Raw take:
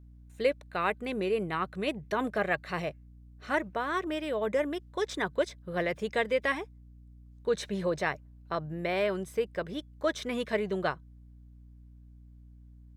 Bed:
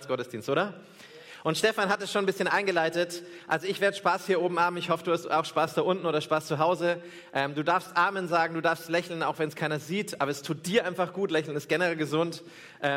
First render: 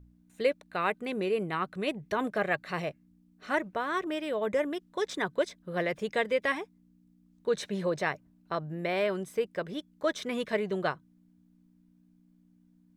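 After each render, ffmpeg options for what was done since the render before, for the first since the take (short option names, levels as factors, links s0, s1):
-af "bandreject=f=60:t=h:w=4,bandreject=f=120:t=h:w=4"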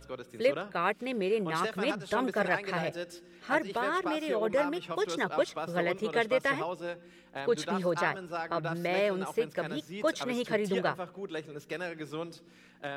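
-filter_complex "[1:a]volume=0.282[s0];[0:a][s0]amix=inputs=2:normalize=0"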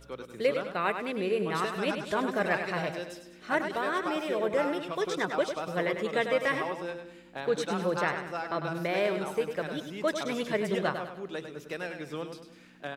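-af "aecho=1:1:100|200|300|400|500:0.398|0.163|0.0669|0.0274|0.0112"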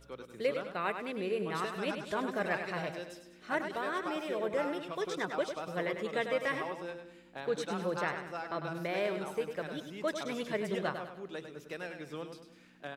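-af "volume=0.562"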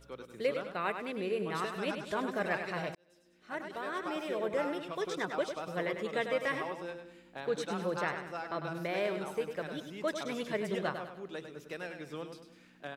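-filter_complex "[0:a]asplit=2[s0][s1];[s0]atrim=end=2.95,asetpts=PTS-STARTPTS,afade=t=out:st=2.946:d=0.004:c=hsin[s2];[s1]atrim=start=2.95,asetpts=PTS-STARTPTS,afade=t=in:d=1.28[s3];[s2][s3]concat=n=2:v=0:a=1"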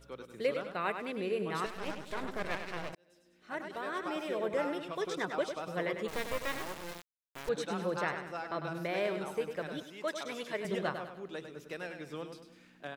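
-filter_complex "[0:a]asettb=1/sr,asplit=3[s0][s1][s2];[s0]atrim=end=1.664[s3];[s1]atrim=start=1.66:end=2.93,asetpts=PTS-STARTPTS,afade=t=in:d=0.004:c=qsin,afade=t=out:st=1.266:d=0.004:c=qsin,aeval=exprs='max(val(0),0)':c=same[s4];[s2]atrim=start=2.926[s5];[s3][s4]acrossfade=d=0.004:c1=hsin:c2=qsin[s6];[s6][s5]acrossfade=d=0.004:c1=qsin:c2=hsin,asettb=1/sr,asplit=3[s7][s8][s9];[s7]atrim=end=6.084[s10];[s8]atrim=start=6.08:end=7.49,asetpts=PTS-STARTPTS,afade=t=in:d=0.004:c=qsin,afade=t=out:st=1.406:d=0.004:c=qsin,acrusher=bits=4:dc=4:mix=0:aa=0.000001[s11];[s9]atrim=start=7.486[s12];[s10][s11]acrossfade=d=0.004:c1=hsin:c2=qsin[s13];[s13][s12]acrossfade=d=0.004:c1=qsin:c2=hsin,asettb=1/sr,asplit=3[s14][s15][s16];[s14]atrim=end=9.834[s17];[s15]atrim=start=9.83:end=10.65,asetpts=PTS-STARTPTS,afade=t=in:d=0.004:c=qsin,afade=t=out:st=0.816:d=0.004:c=qsin,highpass=f=490:p=1[s18];[s16]atrim=start=10.646[s19];[s17][s18]acrossfade=d=0.004:c1=hsin:c2=qsin[s20];[s20][s19]acrossfade=d=0.004:c1=qsin:c2=hsin"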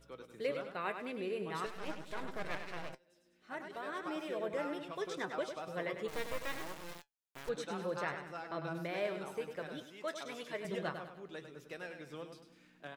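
-af "flanger=delay=6.1:depth=1.9:regen=69:speed=0.46:shape=sinusoidal"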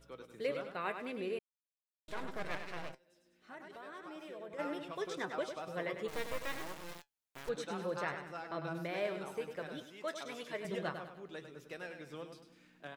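-filter_complex "[0:a]asplit=3[s0][s1][s2];[s0]afade=t=out:st=2.91:d=0.02[s3];[s1]acompressor=threshold=0.00282:ratio=2:attack=3.2:release=140:knee=1:detection=peak,afade=t=in:st=2.91:d=0.02,afade=t=out:st=4.58:d=0.02[s4];[s2]afade=t=in:st=4.58:d=0.02[s5];[s3][s4][s5]amix=inputs=3:normalize=0,asplit=3[s6][s7][s8];[s6]atrim=end=1.39,asetpts=PTS-STARTPTS,afade=t=out:st=1.386:d=0.004:c=hsin[s9];[s7]atrim=start=1.39:end=2.08,asetpts=PTS-STARTPTS,volume=0[s10];[s8]atrim=start=2.08,asetpts=PTS-STARTPTS,afade=t=in:d=0.004:c=hsin[s11];[s9][s10][s11]concat=n=3:v=0:a=1"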